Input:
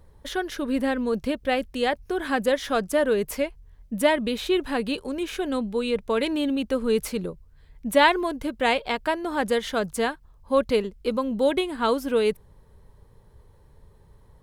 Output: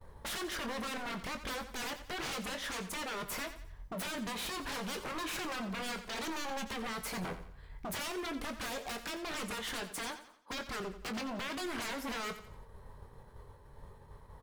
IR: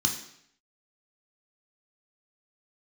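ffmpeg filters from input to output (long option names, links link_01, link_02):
-filter_complex "[0:a]asettb=1/sr,asplit=3[link_01][link_02][link_03];[link_01]atrim=end=9.744[link_04];[link_02]atrim=start=9.74:end=10.64,asetpts=PTS-STARTPTS,afade=type=in:duration=0.004:curve=qsin,afade=type=out:start_time=0.896:duration=0.004:curve=qsin,highpass=frequency=220:width=0.5412,highpass=frequency=220:width=1.3066[link_05];[link_03]atrim=start=10.636[link_06];[link_04][link_05]acrossfade=duration=0.004:curve1=hsin:curve2=qsin[link_07];[link_07][link_06]acrossfade=duration=0.004:curve1=qsin:curve2=hsin,agate=range=-33dB:threshold=-49dB:ratio=3:detection=peak,equalizer=frequency=1100:width=0.64:gain=8,acompressor=threshold=-27dB:ratio=8,aeval=exprs='0.0188*(abs(mod(val(0)/0.0188+3,4)-2)-1)':channel_layout=same,asplit=2[link_08][link_09];[link_09]adelay=22,volume=-9dB[link_10];[link_08][link_10]amix=inputs=2:normalize=0,aecho=1:1:88|176|264|352:0.251|0.1|0.0402|0.0161"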